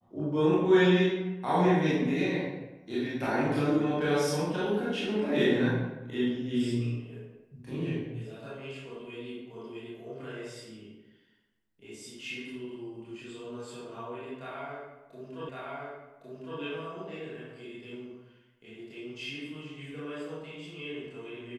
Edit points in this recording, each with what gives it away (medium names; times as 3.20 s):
15.49 s: repeat of the last 1.11 s